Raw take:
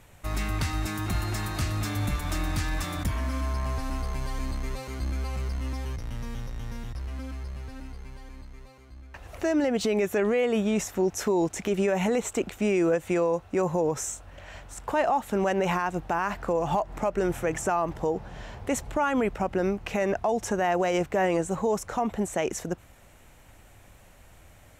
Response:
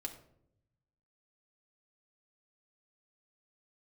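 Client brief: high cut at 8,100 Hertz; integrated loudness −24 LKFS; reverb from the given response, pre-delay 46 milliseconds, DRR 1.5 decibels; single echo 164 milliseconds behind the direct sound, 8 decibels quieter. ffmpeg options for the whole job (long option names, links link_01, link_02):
-filter_complex "[0:a]lowpass=8100,aecho=1:1:164:0.398,asplit=2[link_01][link_02];[1:a]atrim=start_sample=2205,adelay=46[link_03];[link_02][link_03]afir=irnorm=-1:irlink=0,volume=0.5dB[link_04];[link_01][link_04]amix=inputs=2:normalize=0,volume=1dB"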